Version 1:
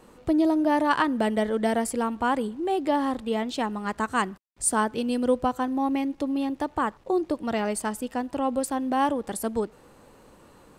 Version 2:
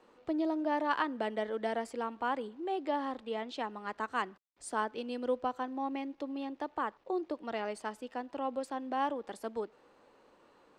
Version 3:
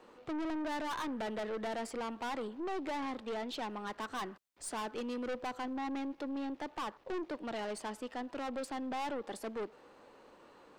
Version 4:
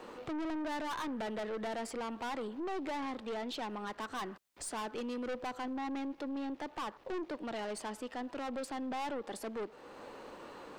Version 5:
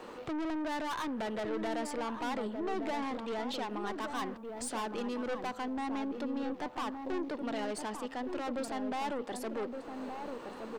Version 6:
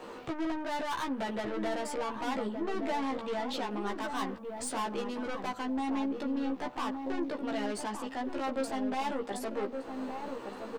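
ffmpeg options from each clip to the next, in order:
ffmpeg -i in.wav -filter_complex "[0:a]acrossover=split=270 5700:gain=0.178 1 0.112[link_01][link_02][link_03];[link_01][link_02][link_03]amix=inputs=3:normalize=0,volume=-8dB" out.wav
ffmpeg -i in.wav -af "aeval=exprs='(tanh(100*val(0)+0.25)-tanh(0.25))/100':channel_layout=same,volume=5dB" out.wav
ffmpeg -i in.wav -af "alimiter=level_in=19dB:limit=-24dB:level=0:latency=1:release=384,volume=-19dB,volume=9.5dB" out.wav
ffmpeg -i in.wav -filter_complex "[0:a]asplit=2[link_01][link_02];[link_02]adelay=1168,lowpass=frequency=860:poles=1,volume=-4.5dB,asplit=2[link_03][link_04];[link_04]adelay=1168,lowpass=frequency=860:poles=1,volume=0.34,asplit=2[link_05][link_06];[link_06]adelay=1168,lowpass=frequency=860:poles=1,volume=0.34,asplit=2[link_07][link_08];[link_08]adelay=1168,lowpass=frequency=860:poles=1,volume=0.34[link_09];[link_01][link_03][link_05][link_07][link_09]amix=inputs=5:normalize=0,volume=2dB" out.wav
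ffmpeg -i in.wav -filter_complex "[0:a]asplit=2[link_01][link_02];[link_02]adelay=15,volume=-2.5dB[link_03];[link_01][link_03]amix=inputs=2:normalize=0" out.wav

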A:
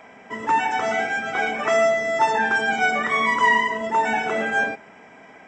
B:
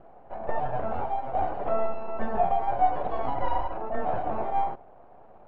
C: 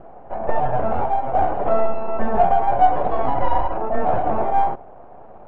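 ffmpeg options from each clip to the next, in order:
ffmpeg -i in.wav -af "aeval=exprs='abs(val(0))':channel_layout=same,lowpass=frequency=720:width_type=q:width=4.9,volume=-4.5dB" out.wav
ffmpeg -i in.wav -filter_complex "[0:a]asplit=2[link_01][link_02];[link_02]volume=24dB,asoftclip=hard,volume=-24dB,volume=-8.5dB[link_03];[link_01][link_03]amix=inputs=2:normalize=0,aemphasis=mode=reproduction:type=75kf,volume=7dB" out.wav

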